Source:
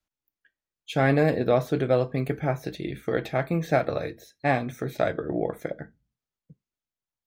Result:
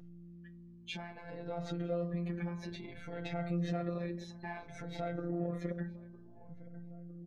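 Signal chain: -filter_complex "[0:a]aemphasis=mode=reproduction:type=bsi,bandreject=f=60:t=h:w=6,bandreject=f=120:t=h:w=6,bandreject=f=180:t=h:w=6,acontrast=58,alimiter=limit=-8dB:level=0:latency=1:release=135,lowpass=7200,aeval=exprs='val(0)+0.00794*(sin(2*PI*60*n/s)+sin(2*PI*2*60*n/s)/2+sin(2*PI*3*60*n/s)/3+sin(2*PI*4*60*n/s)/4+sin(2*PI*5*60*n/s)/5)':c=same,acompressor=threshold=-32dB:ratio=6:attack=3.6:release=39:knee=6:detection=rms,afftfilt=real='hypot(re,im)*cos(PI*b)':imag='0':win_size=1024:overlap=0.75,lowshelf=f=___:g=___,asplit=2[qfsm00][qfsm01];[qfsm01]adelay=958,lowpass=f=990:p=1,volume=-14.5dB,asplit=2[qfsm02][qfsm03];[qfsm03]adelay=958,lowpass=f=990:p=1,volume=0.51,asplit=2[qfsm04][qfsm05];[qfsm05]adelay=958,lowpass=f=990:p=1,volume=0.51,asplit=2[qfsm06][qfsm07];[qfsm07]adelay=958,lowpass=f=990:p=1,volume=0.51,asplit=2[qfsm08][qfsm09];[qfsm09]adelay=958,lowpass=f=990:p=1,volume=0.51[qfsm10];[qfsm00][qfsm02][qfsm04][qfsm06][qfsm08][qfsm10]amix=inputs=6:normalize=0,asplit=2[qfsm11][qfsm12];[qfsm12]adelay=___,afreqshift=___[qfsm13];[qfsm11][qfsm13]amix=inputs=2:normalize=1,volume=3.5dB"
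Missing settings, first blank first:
410, -4.5, 3.9, 0.58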